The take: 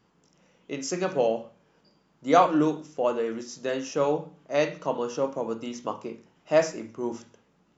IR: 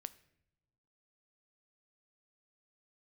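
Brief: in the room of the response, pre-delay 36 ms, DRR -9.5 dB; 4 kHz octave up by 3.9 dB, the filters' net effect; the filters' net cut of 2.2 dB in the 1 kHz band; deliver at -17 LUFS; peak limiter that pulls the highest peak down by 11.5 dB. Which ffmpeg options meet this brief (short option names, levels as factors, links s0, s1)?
-filter_complex "[0:a]equalizer=f=1000:t=o:g=-3.5,equalizer=f=4000:t=o:g=5.5,alimiter=limit=0.112:level=0:latency=1,asplit=2[s0][s1];[1:a]atrim=start_sample=2205,adelay=36[s2];[s1][s2]afir=irnorm=-1:irlink=0,volume=5.01[s3];[s0][s3]amix=inputs=2:normalize=0,volume=1.68"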